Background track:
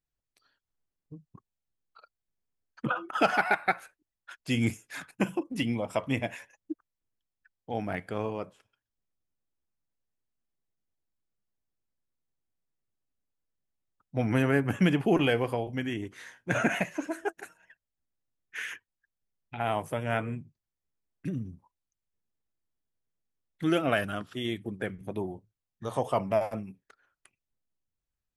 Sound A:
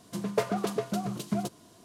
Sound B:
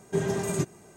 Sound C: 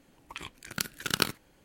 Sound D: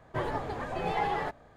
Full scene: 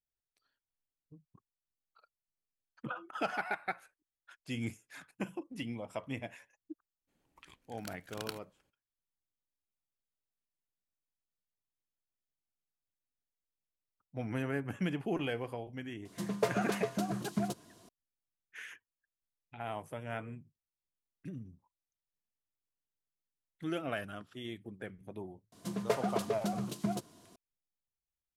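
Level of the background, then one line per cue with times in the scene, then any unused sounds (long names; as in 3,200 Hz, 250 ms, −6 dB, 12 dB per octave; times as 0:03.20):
background track −10.5 dB
0:07.07: mix in C −16.5 dB, fades 0.02 s
0:16.05: mix in A −3.5 dB
0:25.52: mix in A −4 dB
not used: B, D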